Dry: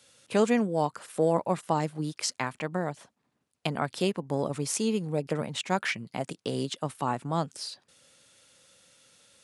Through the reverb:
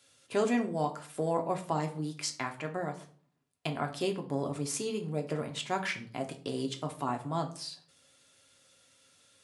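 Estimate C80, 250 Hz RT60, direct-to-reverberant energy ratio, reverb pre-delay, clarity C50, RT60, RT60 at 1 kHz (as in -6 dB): 17.5 dB, 0.60 s, 3.0 dB, 3 ms, 12.5 dB, 0.45 s, 0.45 s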